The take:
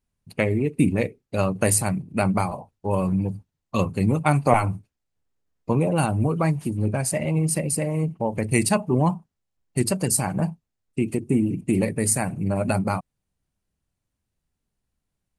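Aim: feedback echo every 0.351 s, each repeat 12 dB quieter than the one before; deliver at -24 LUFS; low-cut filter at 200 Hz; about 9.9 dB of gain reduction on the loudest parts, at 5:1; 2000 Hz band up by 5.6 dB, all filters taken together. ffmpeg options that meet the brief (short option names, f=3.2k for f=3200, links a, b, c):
-af "highpass=200,equalizer=f=2k:t=o:g=7,acompressor=threshold=-22dB:ratio=5,aecho=1:1:351|702|1053:0.251|0.0628|0.0157,volume=4dB"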